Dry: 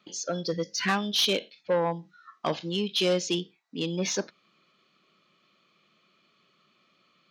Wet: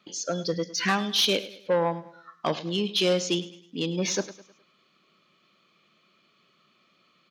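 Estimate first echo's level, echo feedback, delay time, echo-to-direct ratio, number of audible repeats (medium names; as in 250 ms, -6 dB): -16.0 dB, 41%, 104 ms, -15.0 dB, 3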